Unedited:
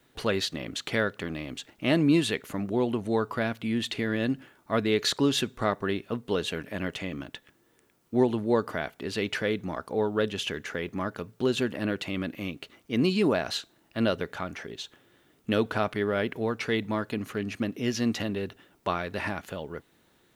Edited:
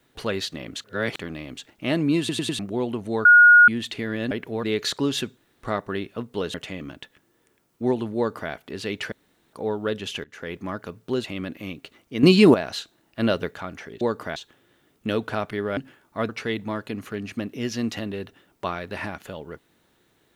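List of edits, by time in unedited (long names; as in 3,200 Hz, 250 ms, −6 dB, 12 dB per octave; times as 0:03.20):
0:00.84–0:01.19: reverse
0:02.19: stutter in place 0.10 s, 4 plays
0:03.25–0:03.68: beep over 1,440 Hz −8 dBFS
0:04.31–0:04.83: swap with 0:16.20–0:16.52
0:05.57: splice in room tone 0.26 s
0:06.48–0:06.86: remove
0:08.49–0:08.84: duplicate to 0:14.79
0:09.44–0:09.85: fill with room tone
0:10.56–0:10.82: fade in, from −23 dB
0:11.56–0:12.02: remove
0:13.01–0:13.32: clip gain +10.5 dB
0:13.97–0:14.29: clip gain +3.5 dB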